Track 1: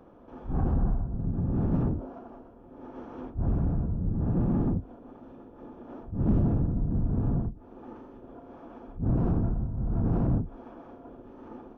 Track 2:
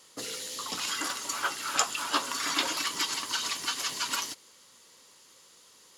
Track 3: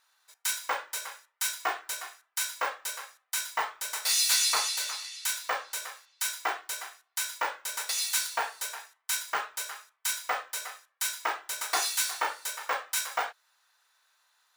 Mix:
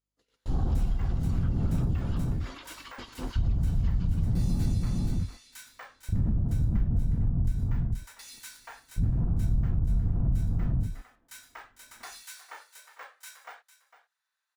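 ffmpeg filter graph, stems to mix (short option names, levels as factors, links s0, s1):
-filter_complex "[0:a]agate=range=0.0891:threshold=0.0112:ratio=16:detection=peak,asubboost=boost=5:cutoff=150,volume=1.41,asplit=2[s0][s1];[s1]volume=0.398[s2];[1:a]acrossover=split=4300[s3][s4];[s4]acompressor=threshold=0.00316:ratio=4:attack=1:release=60[s5];[s3][s5]amix=inputs=2:normalize=0,alimiter=limit=0.0631:level=0:latency=1:release=128,aeval=exprs='val(0)+0.00398*(sin(2*PI*50*n/s)+sin(2*PI*2*50*n/s)/2+sin(2*PI*3*50*n/s)/3+sin(2*PI*4*50*n/s)/4+sin(2*PI*5*50*n/s)/5)':c=same,volume=0.282[s6];[2:a]equalizer=f=1800:t=o:w=0.77:g=4,adelay=300,volume=0.133,asplit=2[s7][s8];[s8]volume=0.2[s9];[s0][s6]amix=inputs=2:normalize=0,agate=range=0.0251:threshold=0.00501:ratio=16:detection=peak,alimiter=limit=0.299:level=0:latency=1:release=446,volume=1[s10];[s2][s9]amix=inputs=2:normalize=0,aecho=0:1:453:1[s11];[s7][s10][s11]amix=inputs=3:normalize=0,acompressor=threshold=0.0562:ratio=3"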